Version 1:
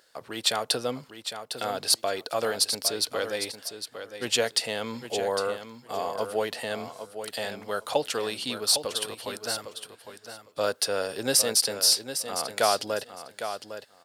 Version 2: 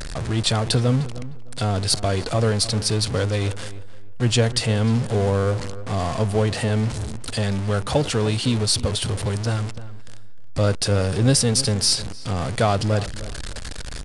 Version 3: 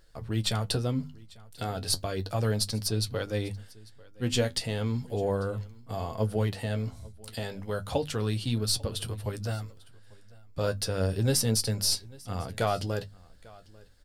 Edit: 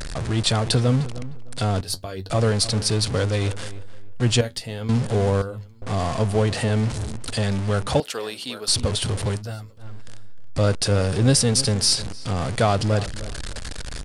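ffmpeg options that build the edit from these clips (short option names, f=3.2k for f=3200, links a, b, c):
-filter_complex "[2:a]asplit=4[a][b][c][d];[1:a]asplit=6[e][f][g][h][i][j];[e]atrim=end=1.812[k];[a]atrim=start=1.808:end=2.302[l];[f]atrim=start=2.298:end=4.412[m];[b]atrim=start=4.408:end=4.892[n];[g]atrim=start=4.888:end=5.422[o];[c]atrim=start=5.418:end=5.822[p];[h]atrim=start=5.818:end=8.002[q];[0:a]atrim=start=7.998:end=8.682[r];[i]atrim=start=8.678:end=9.43[s];[d]atrim=start=9.33:end=9.87[t];[j]atrim=start=9.77[u];[k][l]acrossfade=d=0.004:c1=hsin:c2=hsin[v];[v][m]acrossfade=d=0.004:c1=hsin:c2=hsin[w];[w][n]acrossfade=d=0.004:c1=hsin:c2=hsin[x];[x][o]acrossfade=d=0.004:c1=hsin:c2=hsin[y];[y][p]acrossfade=d=0.004:c1=hsin:c2=hsin[z];[z][q]acrossfade=d=0.004:c1=hsin:c2=hsin[aa];[aa][r]acrossfade=d=0.004:c1=hsin:c2=hsin[ab];[ab][s]acrossfade=d=0.004:c1=hsin:c2=hsin[ac];[ac][t]acrossfade=d=0.1:c1=tri:c2=tri[ad];[ad][u]acrossfade=d=0.1:c1=tri:c2=tri"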